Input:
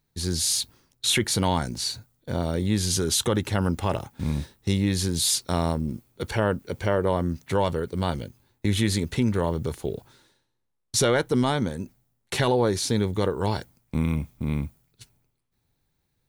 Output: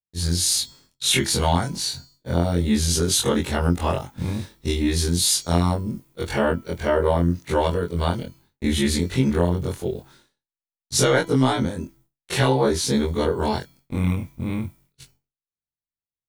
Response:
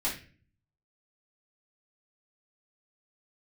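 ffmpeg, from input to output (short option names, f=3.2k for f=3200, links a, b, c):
-af "afftfilt=real='re':imag='-im':win_size=2048:overlap=0.75,bandreject=f=331.5:t=h:w=4,bandreject=f=663:t=h:w=4,bandreject=f=994.5:t=h:w=4,bandreject=f=1.326k:t=h:w=4,bandreject=f=1.6575k:t=h:w=4,bandreject=f=1.989k:t=h:w=4,bandreject=f=2.3205k:t=h:w=4,bandreject=f=2.652k:t=h:w=4,bandreject=f=2.9835k:t=h:w=4,bandreject=f=3.315k:t=h:w=4,bandreject=f=3.6465k:t=h:w=4,bandreject=f=3.978k:t=h:w=4,bandreject=f=4.3095k:t=h:w=4,bandreject=f=4.641k:t=h:w=4,bandreject=f=4.9725k:t=h:w=4,bandreject=f=5.304k:t=h:w=4,bandreject=f=5.6355k:t=h:w=4,bandreject=f=5.967k:t=h:w=4,bandreject=f=6.2985k:t=h:w=4,bandreject=f=6.63k:t=h:w=4,bandreject=f=6.9615k:t=h:w=4,bandreject=f=7.293k:t=h:w=4,bandreject=f=7.6245k:t=h:w=4,agate=range=-33dB:threshold=-57dB:ratio=3:detection=peak,volume=7.5dB"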